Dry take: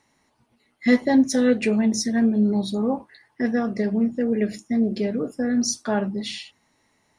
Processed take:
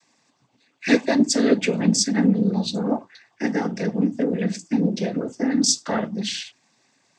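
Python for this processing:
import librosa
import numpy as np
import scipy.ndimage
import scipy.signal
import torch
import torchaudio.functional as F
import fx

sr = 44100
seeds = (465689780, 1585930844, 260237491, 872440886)

y = fx.noise_vocoder(x, sr, seeds[0], bands=16)
y = fx.high_shelf(y, sr, hz=3200.0, db=9.0)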